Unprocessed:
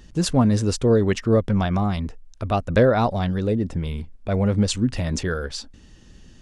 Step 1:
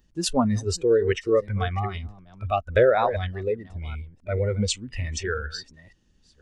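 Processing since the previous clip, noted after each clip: chunks repeated in reverse 494 ms, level -11 dB; spectral noise reduction 17 dB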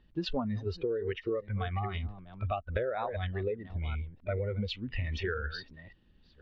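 steep low-pass 4 kHz 36 dB/octave; compression 16:1, threshold -29 dBFS, peak gain reduction 16.5 dB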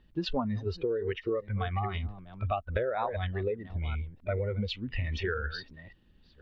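dynamic bell 960 Hz, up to +4 dB, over -48 dBFS, Q 2.8; trim +1.5 dB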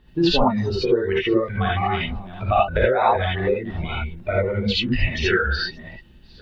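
harmonic-percussive split harmonic -5 dB; gated-style reverb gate 100 ms rising, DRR -6 dB; trim +8.5 dB

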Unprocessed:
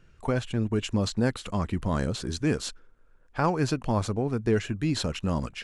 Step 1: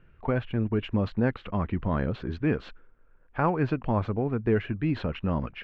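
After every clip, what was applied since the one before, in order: low-pass 2.7 kHz 24 dB/octave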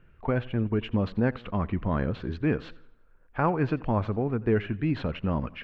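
modulated delay 86 ms, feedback 43%, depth 91 cents, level -21 dB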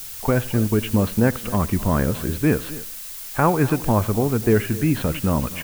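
added noise blue -42 dBFS; delay 260 ms -17.5 dB; trim +7 dB

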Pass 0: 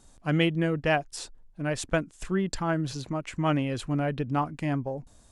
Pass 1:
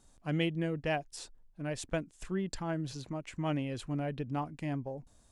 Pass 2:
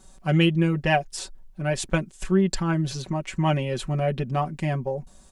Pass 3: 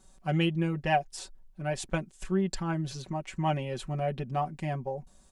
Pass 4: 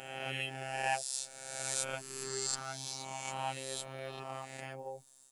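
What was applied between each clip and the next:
dynamic bell 1.3 kHz, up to -6 dB, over -45 dBFS, Q 2; trim -7 dB
comb 5.3 ms, depth 84%; trim +9 dB
dynamic bell 780 Hz, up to +6 dB, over -42 dBFS, Q 3.3; trim -7.5 dB
reverse spectral sustain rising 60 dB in 1.41 s; RIAA curve recording; robot voice 133 Hz; trim -7.5 dB

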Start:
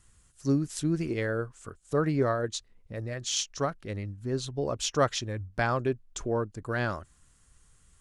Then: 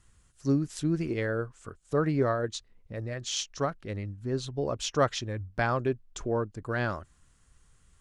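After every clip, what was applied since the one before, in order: treble shelf 8 kHz -9.5 dB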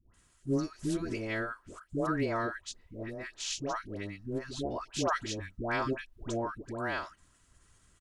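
spectral peaks clipped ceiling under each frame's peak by 12 dB; comb 3.1 ms, depth 34%; phase dispersion highs, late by 140 ms, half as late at 820 Hz; trim -4.5 dB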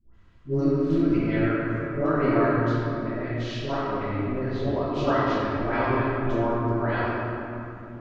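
distance through air 280 m; simulated room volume 130 m³, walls hard, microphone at 1.2 m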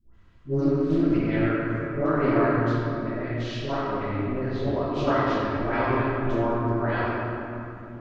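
loudspeaker Doppler distortion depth 0.16 ms

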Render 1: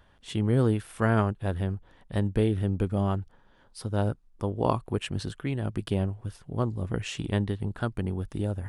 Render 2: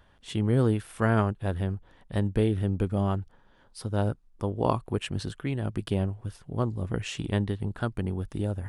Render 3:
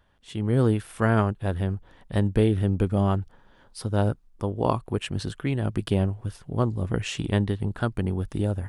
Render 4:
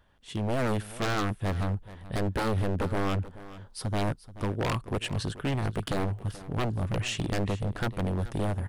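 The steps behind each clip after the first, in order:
no audible change
level rider gain up to 9.5 dB; trim -5 dB
wavefolder -22.5 dBFS; delay 431 ms -16.5 dB

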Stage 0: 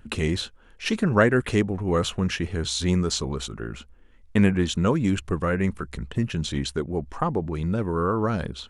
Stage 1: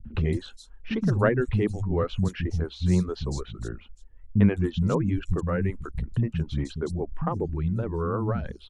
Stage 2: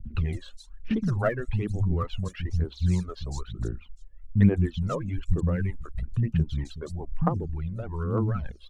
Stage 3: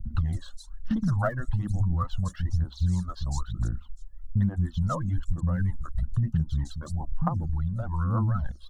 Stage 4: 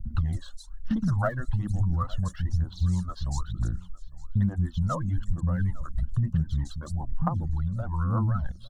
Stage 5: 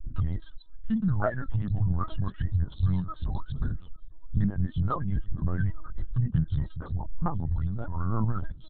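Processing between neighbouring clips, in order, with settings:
tilt EQ -2.5 dB/octave; three bands offset in time lows, mids, highs 50/210 ms, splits 230/4500 Hz; reverb removal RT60 0.78 s; trim -4.5 dB
phaser 1.1 Hz, delay 1.9 ms, feedback 71%; trim -6 dB
static phaser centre 1 kHz, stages 4; compression 6:1, threshold -26 dBFS, peak gain reduction 11 dB; trim +5 dB
delay 856 ms -21.5 dB
LPC vocoder at 8 kHz pitch kept

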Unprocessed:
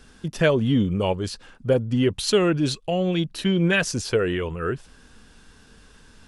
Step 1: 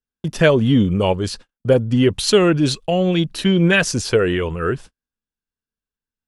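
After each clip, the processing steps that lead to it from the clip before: gate -39 dBFS, range -48 dB; trim +5.5 dB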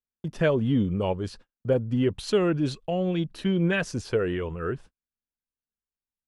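treble shelf 2.8 kHz -10 dB; trim -8.5 dB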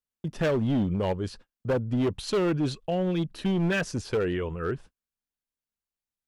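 hard clipper -21 dBFS, distortion -13 dB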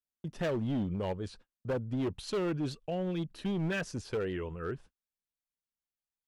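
warped record 78 rpm, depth 100 cents; trim -7 dB

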